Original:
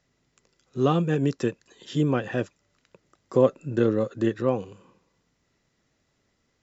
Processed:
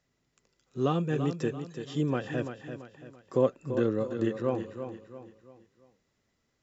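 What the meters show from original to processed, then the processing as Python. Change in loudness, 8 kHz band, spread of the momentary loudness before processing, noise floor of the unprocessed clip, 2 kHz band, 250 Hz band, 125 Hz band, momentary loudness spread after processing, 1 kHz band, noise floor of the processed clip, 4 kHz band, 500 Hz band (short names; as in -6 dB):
-5.5 dB, n/a, 10 LU, -73 dBFS, -5.0 dB, -5.0 dB, -5.0 dB, 16 LU, -5.0 dB, -77 dBFS, -5.0 dB, -5.0 dB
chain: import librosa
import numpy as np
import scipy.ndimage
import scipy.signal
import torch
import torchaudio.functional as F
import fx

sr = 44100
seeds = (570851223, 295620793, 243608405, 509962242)

y = fx.echo_feedback(x, sr, ms=338, feedback_pct=40, wet_db=-9)
y = F.gain(torch.from_numpy(y), -5.5).numpy()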